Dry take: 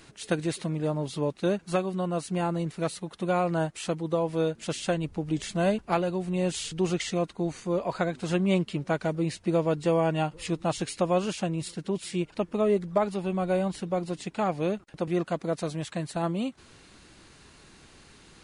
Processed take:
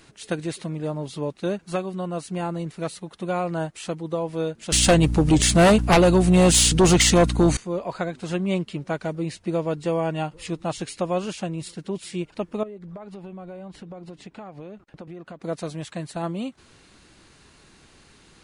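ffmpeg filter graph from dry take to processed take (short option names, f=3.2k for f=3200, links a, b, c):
-filter_complex "[0:a]asettb=1/sr,asplit=3[a][b][c];[a]atrim=end=4.724[d];[b]atrim=start=4.72:end=7.57,asetpts=PTS-STARTPTS,afade=t=in:d=0.004:c=qsin,afade=t=out:st=2.846:d=0.004:c=qsin,highshelf=f=6.6k:g=11.5,aeval=exprs='val(0)+0.0141*(sin(2*PI*60*n/s)+sin(2*PI*2*60*n/s)/2+sin(2*PI*3*60*n/s)/3+sin(2*PI*4*60*n/s)/4+sin(2*PI*5*60*n/s)/5)':c=same,aeval=exprs='0.299*sin(PI/2*3.16*val(0)/0.299)':c=same[e];[c]atrim=start=7.566[f];[d][e]acrossfade=d=0.004:c1=hsin:c2=qsin[g];[g][f]acrossfade=d=0.004:c1=qsin:c2=hsin,asettb=1/sr,asplit=3[h][i][j];[h]atrim=end=12.634[k];[i]atrim=start=12.63:end=15.42,asetpts=PTS-STARTPTS,afade=t=in:d=0.004:c=qsin,afade=t=out:st=2.786:d=0.004:c=qsin,lowpass=f=2.5k:p=1,acompressor=threshold=-35dB:ratio=10:attack=3.2:release=140:knee=1:detection=peak[l];[j]atrim=start=15.416[m];[k][l]acrossfade=d=0.004:c1=hsin:c2=qsin[n];[n][m]acrossfade=d=0.004:c1=qsin:c2=hsin"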